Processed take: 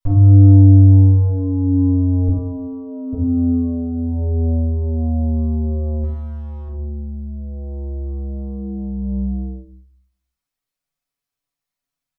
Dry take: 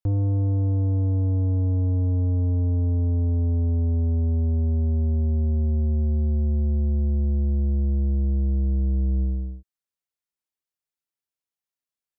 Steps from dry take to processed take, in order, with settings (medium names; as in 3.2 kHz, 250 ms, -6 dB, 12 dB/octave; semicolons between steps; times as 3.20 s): comb 7 ms, depth 78%; 2.28–3.13 s: rippled Chebyshev high-pass 200 Hz, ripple 6 dB; 6.03–6.68 s: hard clipper -39.5 dBFS, distortion -23 dB; simulated room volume 380 m³, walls furnished, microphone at 8.4 m; trim -6.5 dB